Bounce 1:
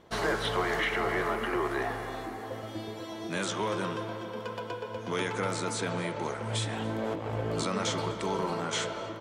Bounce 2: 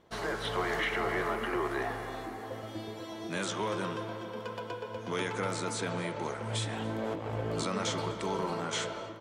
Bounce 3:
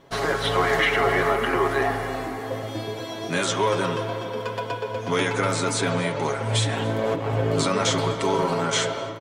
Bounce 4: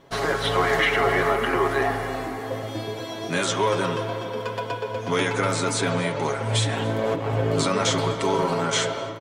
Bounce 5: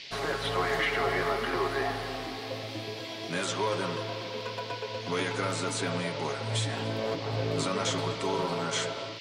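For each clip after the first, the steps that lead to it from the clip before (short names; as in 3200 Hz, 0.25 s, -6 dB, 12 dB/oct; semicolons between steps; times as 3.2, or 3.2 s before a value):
AGC gain up to 4 dB; gain -6 dB
comb 7.3 ms; gain +9 dB
nothing audible
band noise 1900–5000 Hz -37 dBFS; gain -7.5 dB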